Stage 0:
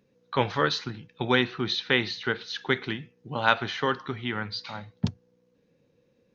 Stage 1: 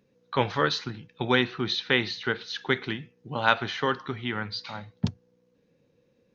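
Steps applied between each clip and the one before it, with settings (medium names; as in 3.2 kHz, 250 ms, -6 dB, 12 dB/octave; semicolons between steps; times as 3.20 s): no audible change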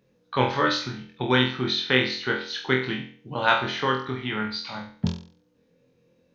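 flutter echo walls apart 4 m, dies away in 0.44 s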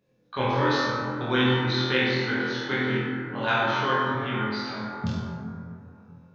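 plate-style reverb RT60 2.8 s, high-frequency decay 0.3×, DRR -6 dB; trim -7.5 dB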